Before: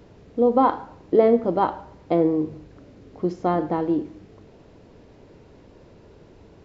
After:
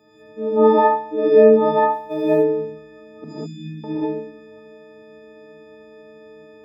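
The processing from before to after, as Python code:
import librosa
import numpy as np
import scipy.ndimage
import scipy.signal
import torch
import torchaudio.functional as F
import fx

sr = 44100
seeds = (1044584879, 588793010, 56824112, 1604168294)

y = fx.freq_snap(x, sr, grid_st=6)
y = scipy.signal.sosfilt(scipy.signal.butter(2, 200.0, 'highpass', fs=sr, output='sos'), y)
y = fx.high_shelf(y, sr, hz=2400.0, db=-8.0)
y = fx.room_early_taps(y, sr, ms=(37, 68), db=(-8.0, -6.0))
y = fx.quant_companded(y, sr, bits=8, at=(1.74, 2.22))
y = fx.cheby2_bandstop(y, sr, low_hz=460.0, high_hz=1400.0, order=4, stop_db=50, at=(3.24, 3.84))
y = fx.rev_gated(y, sr, seeds[0], gate_ms=230, shape='rising', drr_db=-7.5)
y = F.gain(torch.from_numpy(y), -7.5).numpy()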